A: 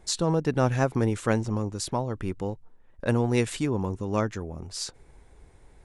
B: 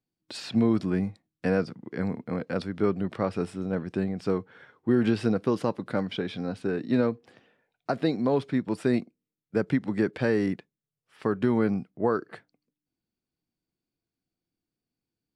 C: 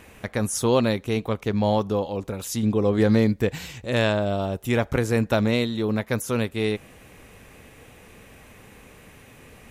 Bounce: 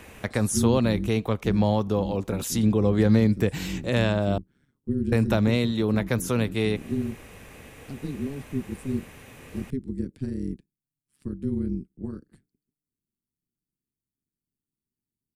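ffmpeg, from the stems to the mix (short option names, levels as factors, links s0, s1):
-filter_complex "[1:a]firequalizer=gain_entry='entry(240,0);entry(470,-27);entry(8600,2)':delay=0.05:min_phase=1,tremolo=f=140:d=0.857,volume=1.33[s0];[2:a]volume=1.26,asplit=3[s1][s2][s3];[s1]atrim=end=4.38,asetpts=PTS-STARTPTS,afade=t=out:st=4.376:d=0.004:c=hsin[s4];[s2]atrim=start=4.38:end=5.12,asetpts=PTS-STARTPTS,volume=0[s5];[s3]atrim=start=5.12,asetpts=PTS-STARTPTS,afade=t=in:d=0.004:c=hsin[s6];[s4][s5][s6]concat=n=3:v=0:a=1[s7];[s0][s7]amix=inputs=2:normalize=0,acrossover=split=230[s8][s9];[s9]acompressor=threshold=0.0501:ratio=2[s10];[s8][s10]amix=inputs=2:normalize=0"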